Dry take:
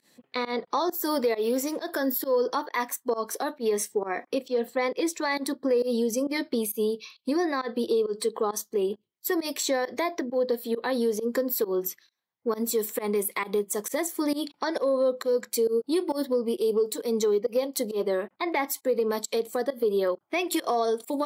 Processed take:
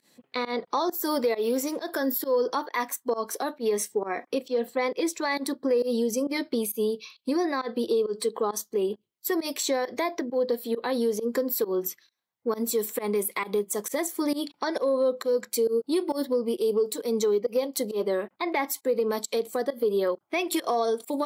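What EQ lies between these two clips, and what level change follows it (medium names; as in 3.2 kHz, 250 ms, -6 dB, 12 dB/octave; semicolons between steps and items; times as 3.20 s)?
band-stop 1.8 kHz, Q 28; 0.0 dB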